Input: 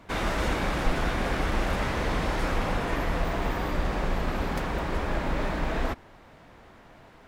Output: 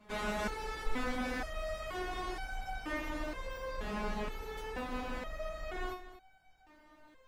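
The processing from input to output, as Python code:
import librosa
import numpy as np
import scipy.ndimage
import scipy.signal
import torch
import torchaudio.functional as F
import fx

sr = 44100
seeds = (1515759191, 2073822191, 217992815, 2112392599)

y = x + 10.0 ** (-13.5 / 20.0) * np.pad(x, (int(230 * sr / 1000.0), 0))[:len(x)]
y = fx.resonator_held(y, sr, hz=2.1, low_hz=210.0, high_hz=760.0)
y = F.gain(torch.from_numpy(y), 5.5).numpy()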